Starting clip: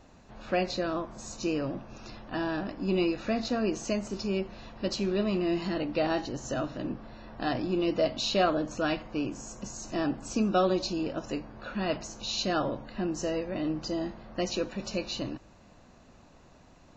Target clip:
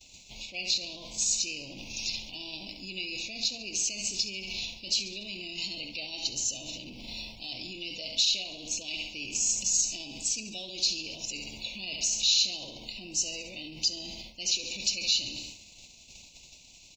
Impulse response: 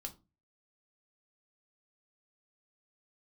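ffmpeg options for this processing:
-af "lowshelf=f=120:g=7.5,aecho=1:1:69|138|207|276|345:0.266|0.136|0.0692|0.0353|0.018,areverse,acompressor=threshold=-36dB:ratio=5,areverse,alimiter=level_in=14.5dB:limit=-24dB:level=0:latency=1:release=31,volume=-14.5dB,agate=range=-33dB:threshold=-43dB:ratio=3:detection=peak,aexciter=amount=9.8:drive=8.8:freq=2k,asuperstop=centerf=1500:order=12:qfactor=1.3"

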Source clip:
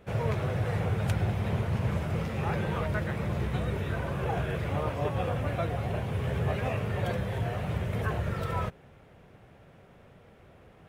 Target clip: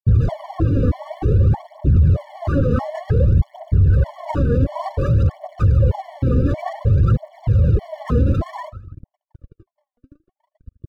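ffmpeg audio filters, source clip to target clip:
-filter_complex "[0:a]aeval=exprs='0.0355*(abs(mod(val(0)/0.0355+3,4)-2)-1)':c=same,equalizer=f=77:t=o:w=2.4:g=14,afftfilt=real='re*gte(hypot(re,im),0.0447)':imag='im*gte(hypot(re,im),0.0447)':win_size=1024:overlap=0.75,highshelf=f=6.2k:g=10,aeval=exprs='sgn(val(0))*max(abs(val(0))-0.00596,0)':c=same,asplit=2[a][b];[b]aecho=0:1:81|162|243:0.0841|0.0395|0.0186[c];[a][c]amix=inputs=2:normalize=0,aphaser=in_gain=1:out_gain=1:delay=4.2:decay=0.73:speed=0.55:type=triangular,bandreject=f=2.4k:w=19,alimiter=level_in=19dB:limit=-1dB:release=50:level=0:latency=1,afftfilt=real='re*gt(sin(2*PI*1.6*pts/sr)*(1-2*mod(floor(b*sr/1024/580),2)),0)':imag='im*gt(sin(2*PI*1.6*pts/sr)*(1-2*mod(floor(b*sr/1024/580),2)),0)':win_size=1024:overlap=0.75,volume=-6dB"

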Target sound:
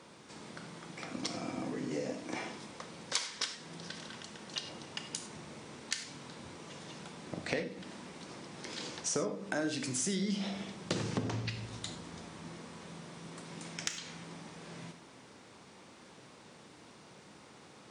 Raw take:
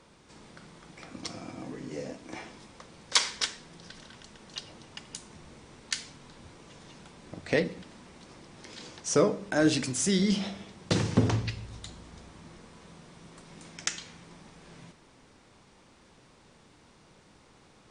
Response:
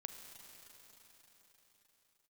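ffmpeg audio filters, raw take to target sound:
-filter_complex "[0:a]highpass=130,acompressor=threshold=-36dB:ratio=5[a];[1:a]atrim=start_sample=2205,atrim=end_sample=6615,asetrate=61740,aresample=44100[b];[a][b]afir=irnorm=-1:irlink=0,volume=11dB"

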